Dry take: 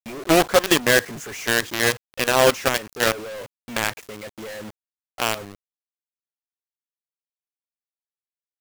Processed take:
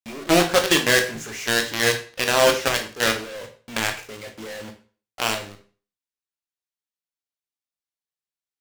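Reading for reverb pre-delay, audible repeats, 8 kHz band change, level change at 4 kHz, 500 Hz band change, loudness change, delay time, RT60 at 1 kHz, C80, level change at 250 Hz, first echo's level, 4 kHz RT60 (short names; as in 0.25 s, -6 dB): 17 ms, none, +0.5 dB, +2.0 dB, -1.0 dB, 0.0 dB, none, 0.40 s, 14.5 dB, -0.5 dB, none, 0.40 s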